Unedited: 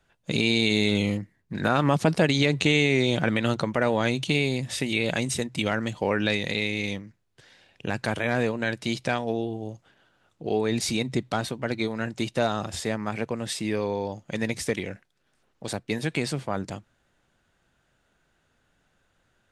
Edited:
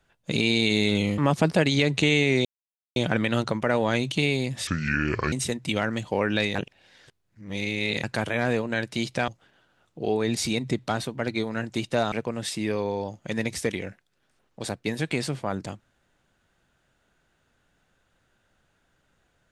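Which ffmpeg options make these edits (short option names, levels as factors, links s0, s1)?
-filter_complex "[0:a]asplit=9[s0][s1][s2][s3][s4][s5][s6][s7][s8];[s0]atrim=end=1.182[s9];[s1]atrim=start=1.808:end=3.08,asetpts=PTS-STARTPTS,afade=t=out:st=1.268:d=0.004:c=hsin,apad=pad_dur=0.51[s10];[s2]atrim=start=3.08:end=4.794,asetpts=PTS-STARTPTS,afade=t=in:d=0.004:c=hsin[s11];[s3]atrim=start=4.79:end=5.22,asetpts=PTS-STARTPTS,asetrate=29106,aresample=44100[s12];[s4]atrim=start=5.216:end=6.452[s13];[s5]atrim=start=6.448:end=7.932,asetpts=PTS-STARTPTS,areverse[s14];[s6]atrim=start=7.928:end=9.182[s15];[s7]atrim=start=9.718:end=12.562[s16];[s8]atrim=start=13.158[s17];[s10][s11]concat=n=2:v=0:a=1[s18];[s9][s18]acrossfade=d=0.004:c1=hsin:c2=hsin[s19];[s19][s12]acrossfade=d=0.004:c1=hsin:c2=hsin[s20];[s20][s13]acrossfade=d=0.004:c1=hsin:c2=hsin[s21];[s21][s14]acrossfade=d=0.004:c1=hsin:c2=hsin[s22];[s22][s15]acrossfade=d=0.004:c1=hsin:c2=hsin[s23];[s23][s16]acrossfade=d=0.004:c1=hsin:c2=hsin[s24];[s24][s17]acrossfade=d=0.004:c1=hsin:c2=hsin"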